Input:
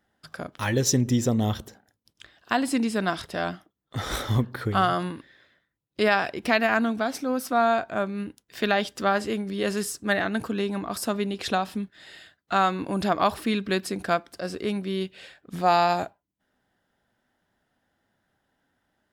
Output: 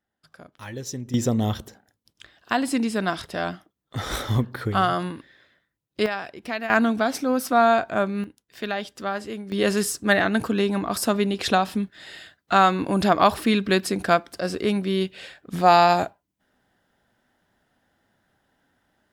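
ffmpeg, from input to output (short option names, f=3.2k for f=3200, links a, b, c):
-af "asetnsamples=n=441:p=0,asendcmd='1.14 volume volume 1dB;6.06 volume volume -7.5dB;6.7 volume volume 4dB;8.24 volume volume -5dB;9.52 volume volume 5dB',volume=-11dB"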